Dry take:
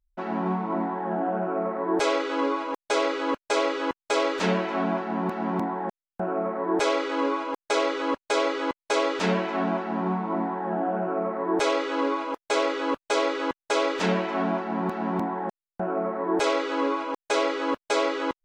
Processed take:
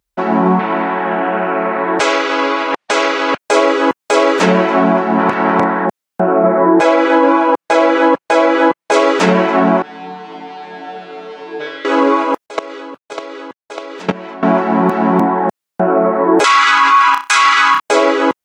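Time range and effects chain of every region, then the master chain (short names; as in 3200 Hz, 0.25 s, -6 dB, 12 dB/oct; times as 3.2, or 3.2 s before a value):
0.59–3.38 LPF 2800 Hz + low shelf 240 Hz -11.5 dB + spectral compressor 2:1
5.18–5.85 spectral limiter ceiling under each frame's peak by 16 dB + air absorption 85 m + doubler 37 ms -12 dB
6.43–8.92 high shelf 4500 Hz -11 dB + comb 6 ms, depth 99%
9.82–11.85 switching spikes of -19.5 dBFS + LPF 3400 Hz 24 dB/oct + resonator 150 Hz, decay 0.5 s, mix 100%
12.46–14.43 level quantiser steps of 22 dB + mismatched tape noise reduction decoder only
16.44–17.8 EQ curve 180 Hz 0 dB, 510 Hz -25 dB, 1100 Hz +15 dB + flutter echo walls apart 5.4 m, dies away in 0.23 s + mismatched tape noise reduction encoder only
whole clip: HPF 130 Hz; dynamic EQ 4000 Hz, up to -5 dB, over -47 dBFS, Q 1.2; maximiser +16.5 dB; gain -1 dB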